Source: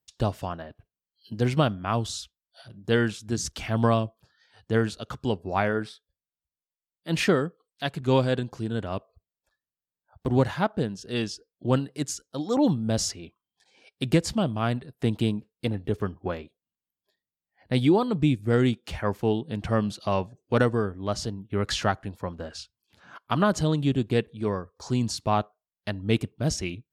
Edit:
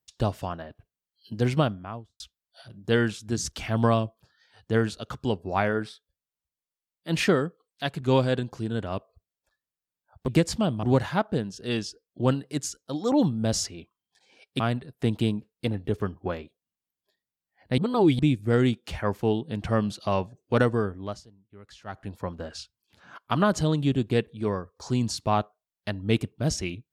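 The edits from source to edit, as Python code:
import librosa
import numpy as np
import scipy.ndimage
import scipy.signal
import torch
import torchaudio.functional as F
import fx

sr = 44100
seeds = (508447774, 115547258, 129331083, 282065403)

y = fx.studio_fade_out(x, sr, start_s=1.49, length_s=0.71)
y = fx.edit(y, sr, fx.move(start_s=14.05, length_s=0.55, to_s=10.28),
    fx.reverse_span(start_s=17.78, length_s=0.41),
    fx.fade_down_up(start_s=20.95, length_s=1.18, db=-22.0, fade_s=0.28), tone=tone)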